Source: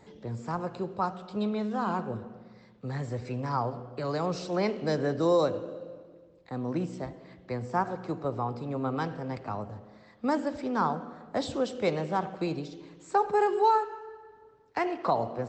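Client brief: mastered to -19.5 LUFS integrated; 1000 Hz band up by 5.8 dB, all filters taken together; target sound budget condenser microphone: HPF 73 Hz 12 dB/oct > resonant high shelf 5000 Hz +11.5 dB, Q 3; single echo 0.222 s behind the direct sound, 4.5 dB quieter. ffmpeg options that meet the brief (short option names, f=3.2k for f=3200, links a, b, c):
-af "highpass=73,equalizer=f=1k:t=o:g=7.5,highshelf=f=5k:t=q:w=3:g=11.5,aecho=1:1:222:0.596,volume=7dB"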